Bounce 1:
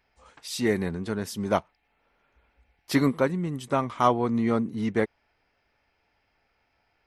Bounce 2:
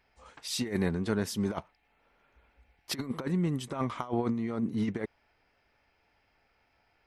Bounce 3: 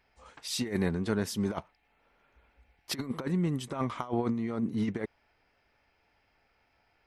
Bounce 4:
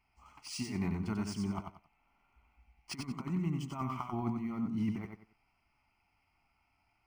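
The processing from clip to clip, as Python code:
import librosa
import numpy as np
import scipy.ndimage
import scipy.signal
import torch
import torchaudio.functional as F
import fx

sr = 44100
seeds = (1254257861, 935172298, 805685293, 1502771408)

y1 = fx.high_shelf(x, sr, hz=9100.0, db=-3.5)
y1 = fx.over_compress(y1, sr, threshold_db=-27.0, ratio=-0.5)
y1 = y1 * librosa.db_to_amplitude(-2.5)
y2 = y1
y3 = fx.fixed_phaser(y2, sr, hz=2500.0, stages=8)
y3 = fx.echo_feedback(y3, sr, ms=92, feedback_pct=26, wet_db=-5.0)
y3 = np.interp(np.arange(len(y3)), np.arange(len(y3))[::3], y3[::3])
y3 = y3 * librosa.db_to_amplitude(-3.0)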